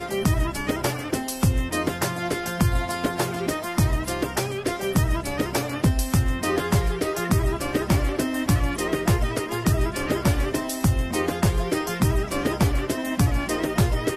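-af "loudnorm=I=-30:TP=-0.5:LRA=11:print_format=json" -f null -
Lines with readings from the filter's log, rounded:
"input_i" : "-24.3",
"input_tp" : "-9.9",
"input_lra" : "1.2",
"input_thresh" : "-34.3",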